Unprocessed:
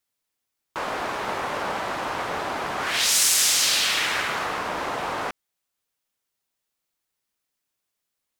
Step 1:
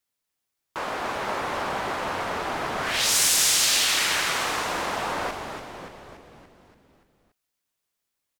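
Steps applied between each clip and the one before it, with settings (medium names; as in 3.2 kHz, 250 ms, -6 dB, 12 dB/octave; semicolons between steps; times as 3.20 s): frequency-shifting echo 287 ms, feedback 57%, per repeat -110 Hz, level -6.5 dB; trim -1.5 dB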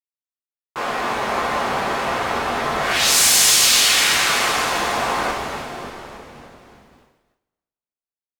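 two-slope reverb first 0.42 s, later 3.1 s, from -15 dB, DRR -4 dB; expander -50 dBFS; trim +1.5 dB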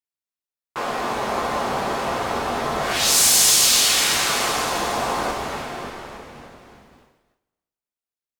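dynamic bell 2 kHz, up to -6 dB, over -30 dBFS, Q 0.8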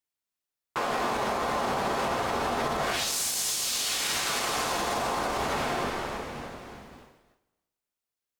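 compression, threshold -26 dBFS, peak gain reduction 13 dB; peak limiter -22.5 dBFS, peak gain reduction 7.5 dB; trim +3 dB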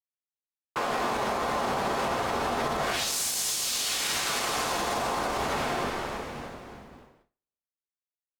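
gate with hold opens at -50 dBFS; tape noise reduction on one side only decoder only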